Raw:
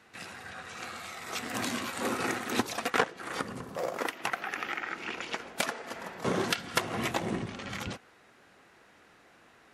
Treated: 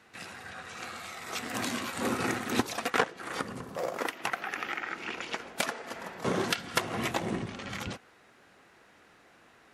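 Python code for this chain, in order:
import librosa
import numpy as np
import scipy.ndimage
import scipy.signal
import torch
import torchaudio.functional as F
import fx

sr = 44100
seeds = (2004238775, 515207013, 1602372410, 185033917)

y = fx.bass_treble(x, sr, bass_db=6, treble_db=0, at=(1.95, 2.6))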